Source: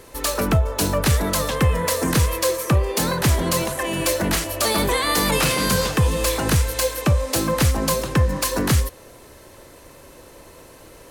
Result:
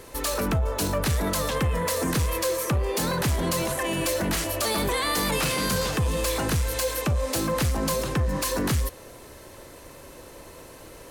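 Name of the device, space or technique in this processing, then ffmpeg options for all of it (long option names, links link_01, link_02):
soft clipper into limiter: -af "asoftclip=type=tanh:threshold=-13.5dB,alimiter=limit=-19dB:level=0:latency=1:release=36"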